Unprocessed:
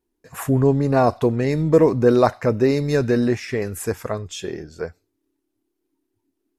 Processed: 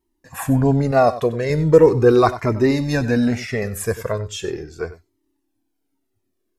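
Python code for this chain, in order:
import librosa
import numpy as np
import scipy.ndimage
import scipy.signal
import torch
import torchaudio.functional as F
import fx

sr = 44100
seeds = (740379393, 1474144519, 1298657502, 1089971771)

y = fx.low_shelf(x, sr, hz=180.0, db=-10.5, at=(0.91, 1.5))
y = y + 10.0 ** (-15.0 / 20.0) * np.pad(y, (int(95 * sr / 1000.0), 0))[:len(y)]
y = fx.comb_cascade(y, sr, direction='falling', hz=0.39)
y = y * 10.0 ** (6.5 / 20.0)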